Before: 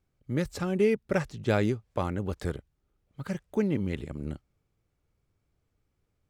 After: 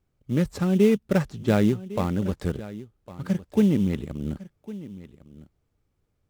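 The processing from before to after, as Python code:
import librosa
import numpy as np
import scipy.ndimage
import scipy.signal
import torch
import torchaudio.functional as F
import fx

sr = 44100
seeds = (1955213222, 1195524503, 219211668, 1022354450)

p1 = fx.dynamic_eq(x, sr, hz=200.0, q=1.9, threshold_db=-42.0, ratio=4.0, max_db=7)
p2 = fx.sample_hold(p1, sr, seeds[0], rate_hz=3200.0, jitter_pct=20)
p3 = p1 + F.gain(torch.from_numpy(p2), -8.5).numpy()
y = p3 + 10.0 ** (-17.0 / 20.0) * np.pad(p3, (int(1105 * sr / 1000.0), 0))[:len(p3)]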